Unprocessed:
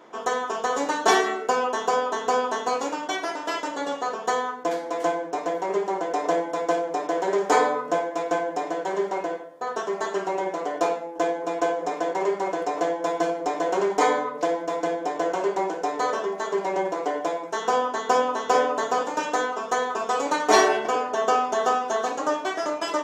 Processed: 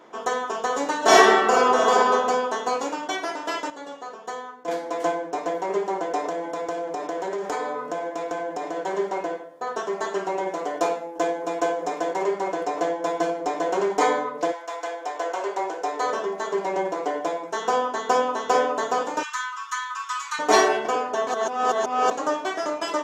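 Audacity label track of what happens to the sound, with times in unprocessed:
0.980000	2.110000	reverb throw, RT60 1.2 s, DRR -6.5 dB
3.700000	4.680000	gain -9 dB
6.280000	8.760000	compressor 4:1, threshold -25 dBFS
10.470000	12.240000	high shelf 7600 Hz +5.5 dB
14.510000	16.050000	HPF 1000 Hz -> 320 Hz
19.230000	20.390000	steep high-pass 1000 Hz 96 dB/oct
21.270000	22.110000	reverse

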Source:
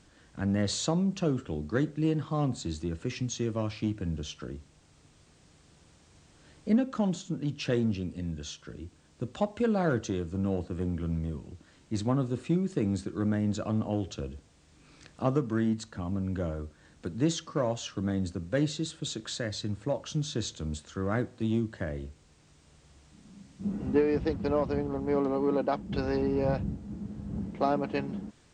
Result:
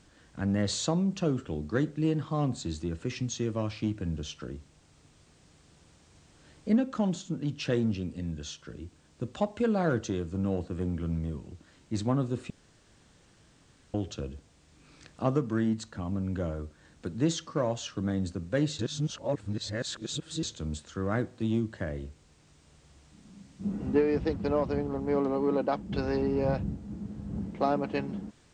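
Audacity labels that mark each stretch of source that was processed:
12.500000	13.940000	room tone
18.790000	20.430000	reverse

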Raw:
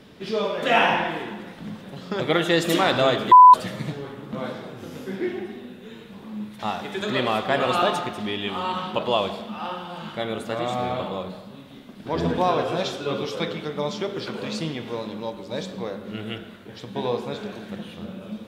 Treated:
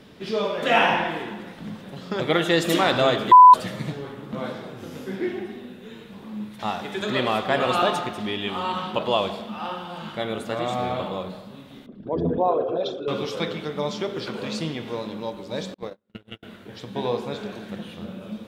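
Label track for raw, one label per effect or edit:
11.860000	13.080000	formant sharpening exponent 2
15.740000	16.430000	gate -30 dBFS, range -41 dB

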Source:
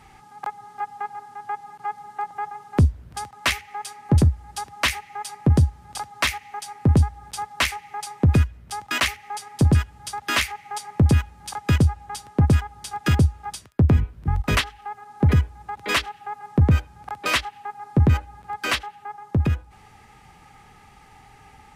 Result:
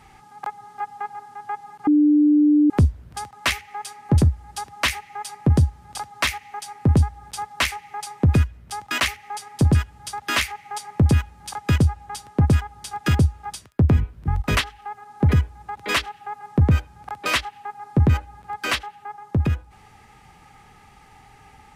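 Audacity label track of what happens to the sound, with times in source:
1.870000	2.700000	bleep 297 Hz -12 dBFS

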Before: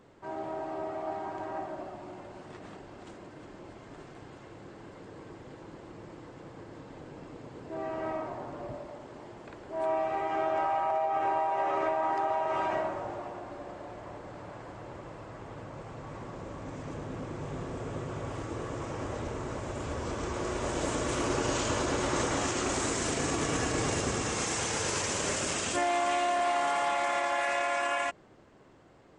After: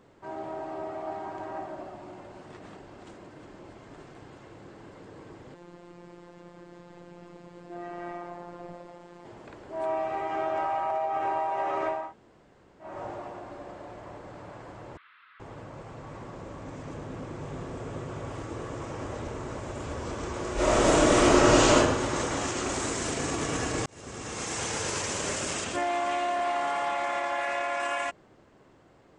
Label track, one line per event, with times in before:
5.540000	9.250000	robotiser 174 Hz
12.020000	12.910000	room tone, crossfade 0.24 s
14.970000	15.400000	elliptic band-pass 1300–3800 Hz
20.540000	21.760000	reverb throw, RT60 0.93 s, DRR -10.5 dB
23.860000	24.640000	fade in
25.640000	27.800000	high shelf 5600 Hz -8.5 dB

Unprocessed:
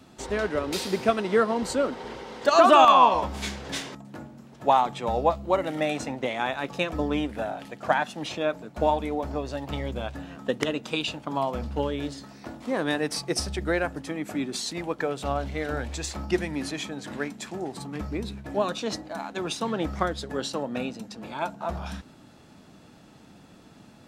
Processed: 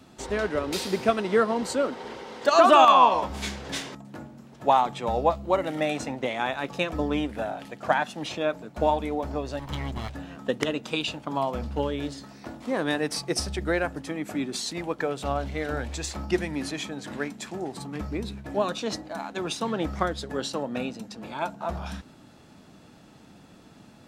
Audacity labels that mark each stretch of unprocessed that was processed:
1.610000	3.300000	HPF 140 Hz 6 dB/oct
9.590000	10.100000	minimum comb delay 0.98 ms

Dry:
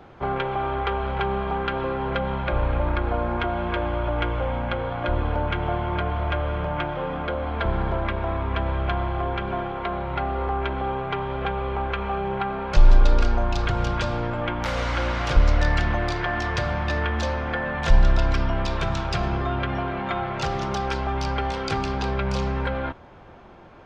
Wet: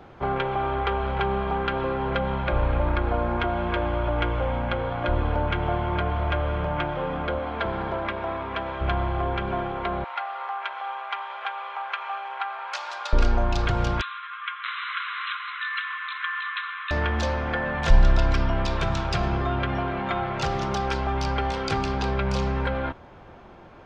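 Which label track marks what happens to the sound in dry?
7.380000	8.800000	HPF 170 Hz -> 450 Hz 6 dB/oct
10.040000	13.130000	HPF 810 Hz 24 dB/oct
14.010000	16.910000	brick-wall FIR band-pass 1000–4100 Hz

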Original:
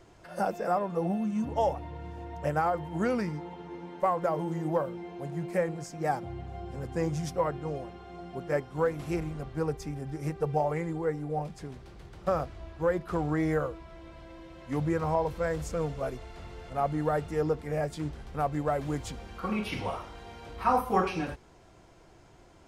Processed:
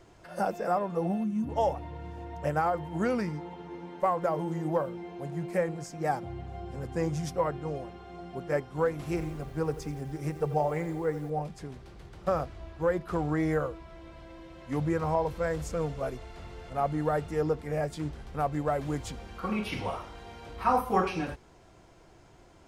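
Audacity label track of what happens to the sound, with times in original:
1.240000	1.490000	spectral gain 430–8700 Hz -7 dB
8.940000	11.300000	lo-fi delay 86 ms, feedback 55%, word length 8-bit, level -14 dB

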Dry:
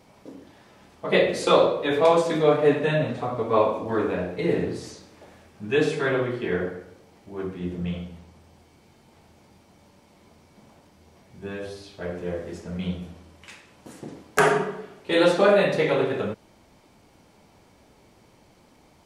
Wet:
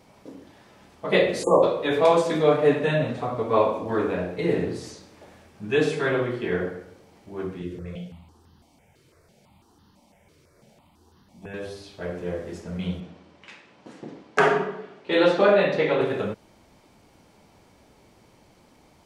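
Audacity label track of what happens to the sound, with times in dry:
1.430000	1.630000	spectral delete 1200–6400 Hz
7.620000	11.540000	step phaser 6 Hz 210–2300 Hz
13.000000	16.010000	BPF 150–4500 Hz

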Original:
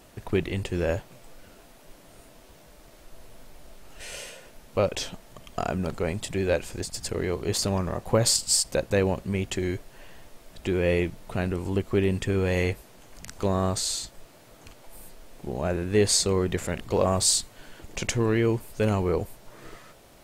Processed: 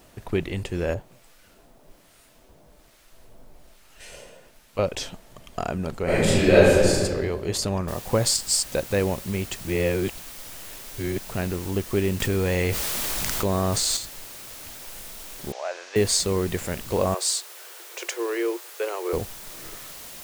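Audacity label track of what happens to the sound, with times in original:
0.940000	4.790000	harmonic tremolo 1.2 Hz, crossover 1100 Hz
6.040000	6.940000	reverb throw, RT60 1.6 s, DRR -12 dB
7.880000	7.880000	noise floor step -69 dB -41 dB
9.560000	11.190000	reverse
12.200000	13.970000	fast leveller amount 70%
15.520000	15.960000	elliptic band-pass 600–6200 Hz, stop band 60 dB
17.140000	19.130000	rippled Chebyshev high-pass 340 Hz, ripple 3 dB

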